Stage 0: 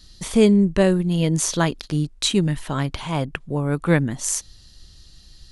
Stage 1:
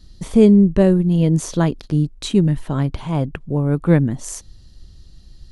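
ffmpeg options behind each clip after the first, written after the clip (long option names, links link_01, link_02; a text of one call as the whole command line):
ffmpeg -i in.wav -af "tiltshelf=frequency=860:gain=6.5,volume=-1dB" out.wav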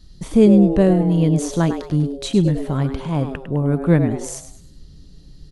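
ffmpeg -i in.wav -filter_complex "[0:a]asplit=5[link_01][link_02][link_03][link_04][link_05];[link_02]adelay=103,afreqshift=130,volume=-10dB[link_06];[link_03]adelay=206,afreqshift=260,volume=-19.1dB[link_07];[link_04]adelay=309,afreqshift=390,volume=-28.2dB[link_08];[link_05]adelay=412,afreqshift=520,volume=-37.4dB[link_09];[link_01][link_06][link_07][link_08][link_09]amix=inputs=5:normalize=0,volume=-1dB" out.wav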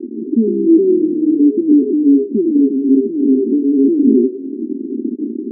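ffmpeg -i in.wav -af "aeval=exprs='val(0)+0.5*0.158*sgn(val(0))':channel_layout=same,apsyclip=15dB,asuperpass=centerf=300:order=12:qfactor=1.7,volume=-3dB" out.wav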